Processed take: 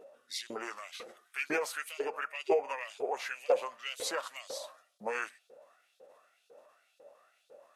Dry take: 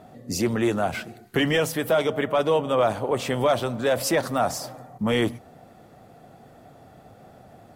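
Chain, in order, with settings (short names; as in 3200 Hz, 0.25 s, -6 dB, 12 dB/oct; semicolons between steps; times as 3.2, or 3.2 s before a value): LFO high-pass saw up 2 Hz 490–5300 Hz; formant shift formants -4 st; gain -9 dB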